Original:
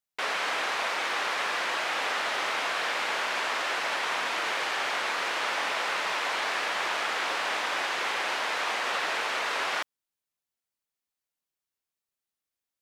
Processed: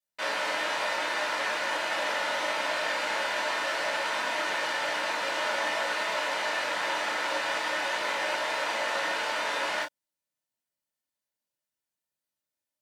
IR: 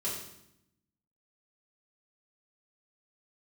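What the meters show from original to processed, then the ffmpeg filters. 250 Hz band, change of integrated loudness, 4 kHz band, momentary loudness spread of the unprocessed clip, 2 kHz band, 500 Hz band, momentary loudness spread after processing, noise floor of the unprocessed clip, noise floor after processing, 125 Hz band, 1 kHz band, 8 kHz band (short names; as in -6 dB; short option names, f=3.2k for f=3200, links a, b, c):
+2.0 dB, -0.5 dB, -1.0 dB, 0 LU, -0.5 dB, +3.5 dB, 1 LU, under -85 dBFS, under -85 dBFS, n/a, -0.5 dB, -0.5 dB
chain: -filter_complex "[1:a]atrim=start_sample=2205,atrim=end_sample=3969,asetrate=66150,aresample=44100[a];[0:a][a]afir=irnorm=-1:irlink=0"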